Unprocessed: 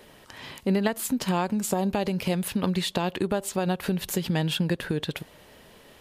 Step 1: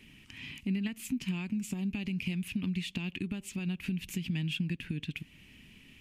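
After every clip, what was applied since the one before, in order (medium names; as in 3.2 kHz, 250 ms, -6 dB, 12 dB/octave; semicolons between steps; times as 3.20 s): FFT filter 270 Hz 0 dB, 530 Hz -25 dB, 1.6 kHz -13 dB, 2.5 kHz +6 dB, 3.9 kHz -10 dB, 6.5 kHz -7 dB, 12 kHz -12 dB; compression 1.5:1, threshold -41 dBFS, peak gain reduction 7.5 dB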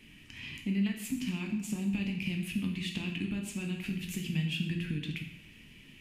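plate-style reverb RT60 0.82 s, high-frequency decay 0.85×, DRR 1 dB; trim -1 dB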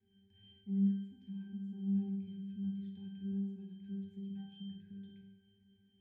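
pitch-class resonator G, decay 0.74 s; trim +3 dB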